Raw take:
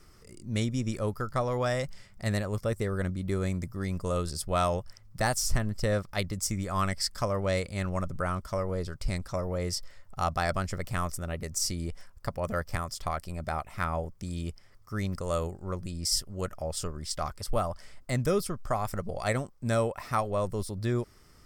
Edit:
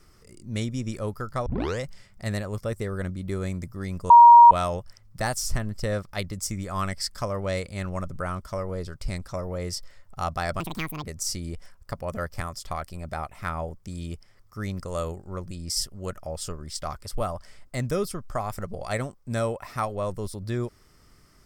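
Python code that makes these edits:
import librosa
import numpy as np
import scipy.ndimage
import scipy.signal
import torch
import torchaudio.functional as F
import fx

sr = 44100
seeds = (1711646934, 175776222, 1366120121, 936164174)

y = fx.edit(x, sr, fx.tape_start(start_s=1.46, length_s=0.34),
    fx.bleep(start_s=4.1, length_s=0.41, hz=946.0, db=-6.5),
    fx.speed_span(start_s=10.6, length_s=0.79, speed=1.81), tone=tone)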